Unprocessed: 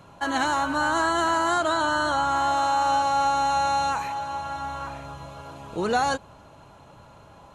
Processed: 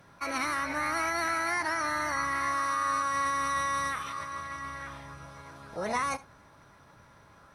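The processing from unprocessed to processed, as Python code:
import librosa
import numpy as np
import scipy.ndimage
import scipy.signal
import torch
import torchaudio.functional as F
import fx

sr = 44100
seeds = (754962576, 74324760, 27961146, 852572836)

p1 = fx.formant_shift(x, sr, semitones=6)
p2 = p1 + fx.echo_single(p1, sr, ms=72, db=-19.5, dry=0)
y = p2 * 10.0 ** (-7.0 / 20.0)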